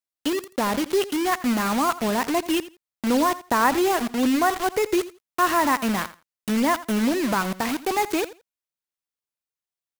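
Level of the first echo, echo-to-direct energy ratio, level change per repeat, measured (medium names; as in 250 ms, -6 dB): -16.5 dB, -16.5 dB, -15.5 dB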